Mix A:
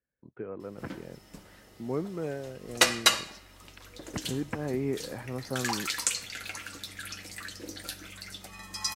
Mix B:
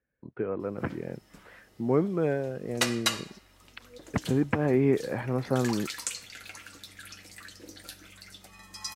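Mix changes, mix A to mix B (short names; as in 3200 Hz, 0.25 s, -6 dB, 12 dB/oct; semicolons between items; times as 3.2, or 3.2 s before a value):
speech +7.5 dB; background -5.5 dB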